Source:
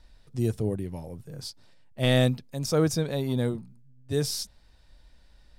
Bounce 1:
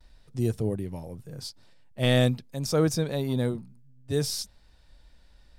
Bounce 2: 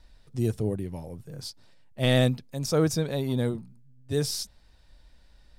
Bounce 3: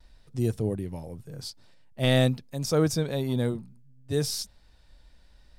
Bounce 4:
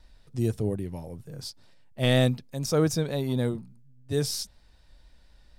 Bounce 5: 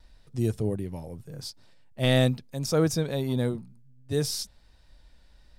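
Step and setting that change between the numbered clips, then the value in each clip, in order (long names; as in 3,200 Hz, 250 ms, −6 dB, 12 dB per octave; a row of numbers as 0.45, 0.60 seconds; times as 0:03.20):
pitch vibrato, speed: 0.35, 14, 0.57, 4.2, 1.5 Hertz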